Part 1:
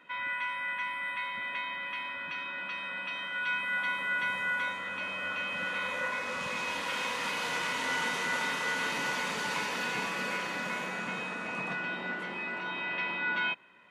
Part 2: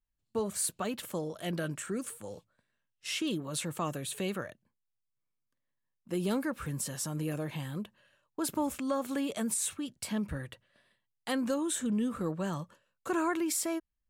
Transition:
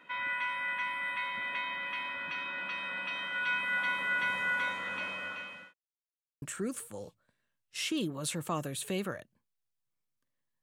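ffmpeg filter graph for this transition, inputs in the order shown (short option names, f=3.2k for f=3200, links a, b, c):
-filter_complex "[0:a]apad=whole_dur=10.62,atrim=end=10.62,asplit=2[a][b];[a]atrim=end=5.74,asetpts=PTS-STARTPTS,afade=t=out:st=4.96:d=0.78[c];[b]atrim=start=5.74:end=6.42,asetpts=PTS-STARTPTS,volume=0[d];[1:a]atrim=start=1.72:end=5.92,asetpts=PTS-STARTPTS,afade=t=in:d=0.004:c=hsin[e];[c][d][e]concat=n=3:v=0:a=1"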